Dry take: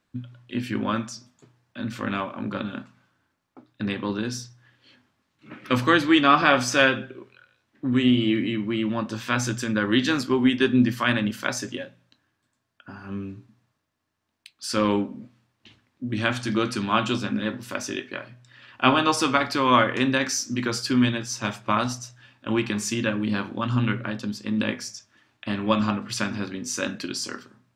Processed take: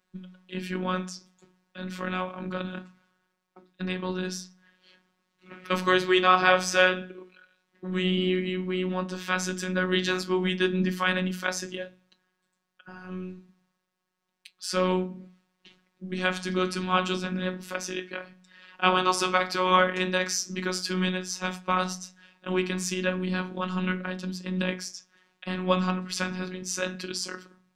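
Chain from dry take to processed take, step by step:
phases set to zero 184 Hz
mains-hum notches 60/120/180/240/300/360 Hz

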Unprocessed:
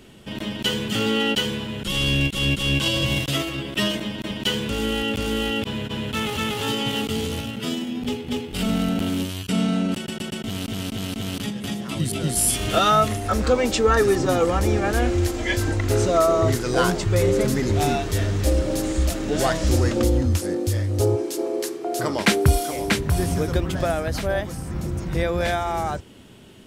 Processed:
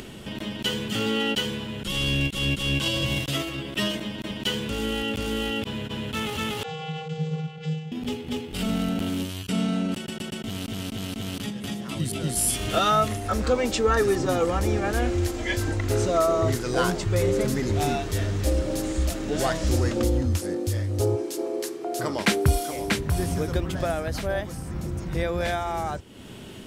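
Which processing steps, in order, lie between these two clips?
0:06.63–0:07.92: channel vocoder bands 32, square 157 Hz
upward compression, threshold −27 dBFS
level −3.5 dB

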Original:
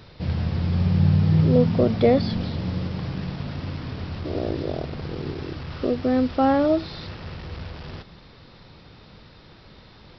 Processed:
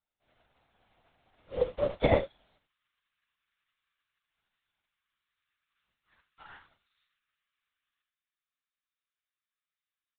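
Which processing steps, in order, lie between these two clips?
high-pass filter 530 Hz 24 dB per octave, from 0:02.58 1,300 Hz
double-tracking delay 31 ms −6 dB
multi-tap delay 73/75 ms −6/−17.5 dB
linear-prediction vocoder at 8 kHz whisper
expander for the loud parts 2.5 to 1, over −46 dBFS

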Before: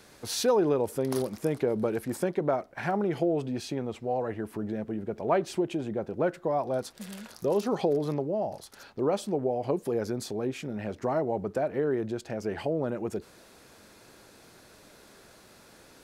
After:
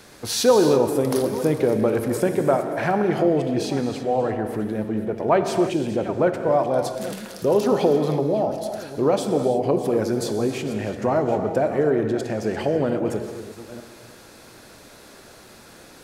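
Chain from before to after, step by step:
delay that plays each chunk backwards 476 ms, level −14 dB
reverb whose tail is shaped and stops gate 360 ms flat, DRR 6 dB
level +7 dB

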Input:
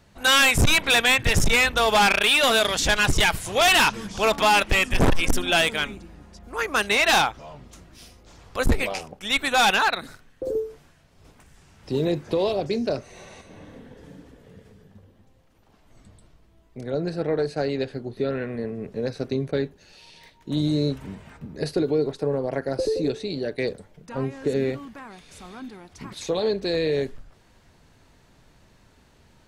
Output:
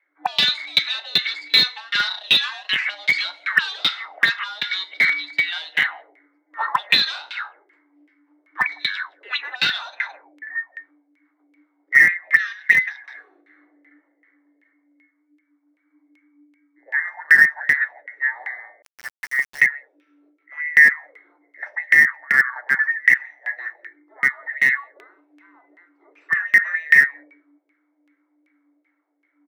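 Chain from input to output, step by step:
frequency inversion band by band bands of 2,000 Hz
0:12.35–0:13.67: high-shelf EQ 2,300 Hz +7 dB
rectangular room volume 56 cubic metres, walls mixed, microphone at 0.33 metres
frequency shifter +290 Hz
envelope filter 240–4,200 Hz, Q 5, up, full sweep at −16.5 dBFS
single-tap delay 168 ms −18.5 dB
auto-filter low-pass saw down 2.6 Hz 530–2,200 Hz
first difference
in parallel at −7 dB: comparator with hysteresis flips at −33.5 dBFS
on the sum: high-pass filter 150 Hz 24 dB per octave
0:18.82–0:19.61: centre clipping without the shift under −55.5 dBFS
boost into a limiter +25 dB
level −1 dB

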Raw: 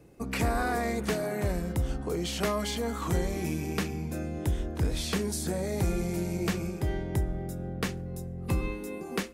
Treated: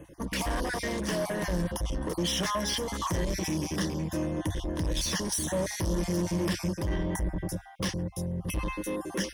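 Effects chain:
time-frequency cells dropped at random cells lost 28%
in parallel at +1 dB: brickwall limiter −25 dBFS, peak gain reduction 7.5 dB
on the sum: dynamic equaliser 5,000 Hz, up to +7 dB, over −51 dBFS, Q 1.7
soft clipping −27 dBFS, distortion −9 dB
EQ curve with evenly spaced ripples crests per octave 1.2, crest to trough 9 dB
reversed playback
upward compression, threshold −38 dBFS
reversed playback

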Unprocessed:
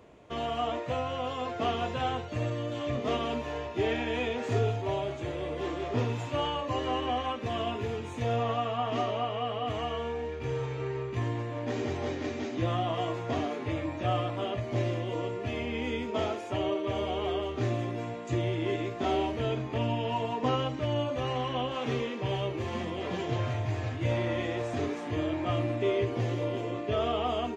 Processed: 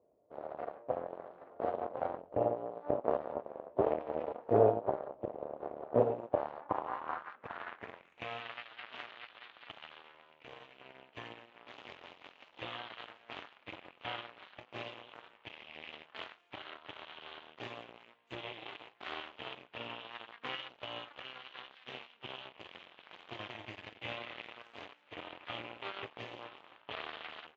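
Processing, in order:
spectral tilt −3.5 dB per octave
harmonic generator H 3 −22 dB, 4 −16 dB, 6 −32 dB, 7 −18 dB, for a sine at −8.5 dBFS
band-pass filter sweep 590 Hz → 3,000 Hz, 0:06.22–0:08.43
level +3.5 dB

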